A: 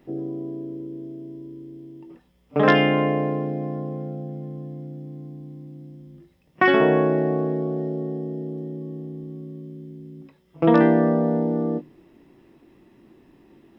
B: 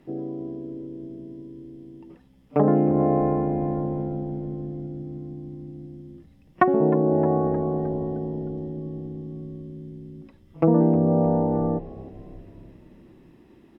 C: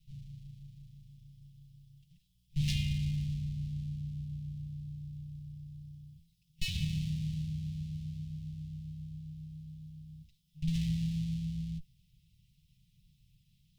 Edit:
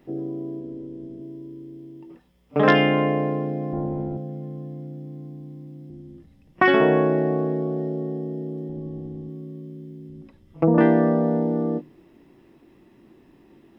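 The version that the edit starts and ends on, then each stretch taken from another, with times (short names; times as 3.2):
A
0.6–1.21 from B
3.73–4.17 from B
5.9–6.62 from B
8.69–9.29 from B
10.09–10.78 from B
not used: C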